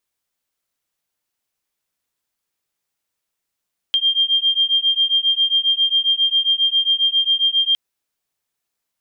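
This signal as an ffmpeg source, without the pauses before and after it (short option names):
-f lavfi -i "aevalsrc='0.133*(sin(2*PI*3190*t)+sin(2*PI*3197.4*t))':d=3.81:s=44100"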